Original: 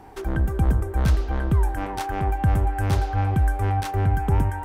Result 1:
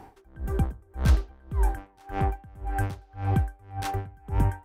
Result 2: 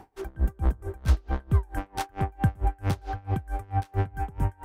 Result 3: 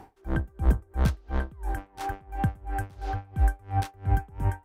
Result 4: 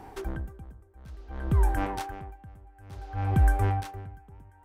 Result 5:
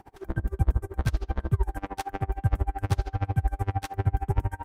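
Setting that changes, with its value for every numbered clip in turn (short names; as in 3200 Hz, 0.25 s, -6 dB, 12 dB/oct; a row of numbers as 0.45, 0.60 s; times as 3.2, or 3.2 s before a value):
dB-linear tremolo, rate: 1.8, 4.5, 2.9, 0.57, 13 Hz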